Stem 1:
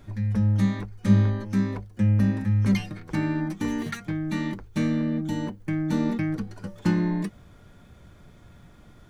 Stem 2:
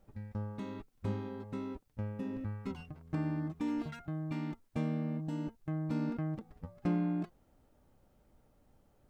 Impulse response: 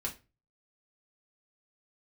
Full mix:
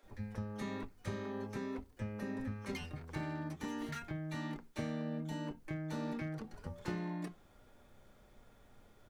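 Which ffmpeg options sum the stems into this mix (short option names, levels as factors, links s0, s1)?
-filter_complex "[0:a]highpass=f=390:w=0.5412,highpass=f=390:w=1.3066,asoftclip=type=hard:threshold=0.0355,volume=0.299[s0];[1:a]acompressor=threshold=0.01:ratio=6,adelay=30,volume=1,asplit=2[s1][s2];[s2]volume=0.473[s3];[2:a]atrim=start_sample=2205[s4];[s3][s4]afir=irnorm=-1:irlink=0[s5];[s0][s1][s5]amix=inputs=3:normalize=0"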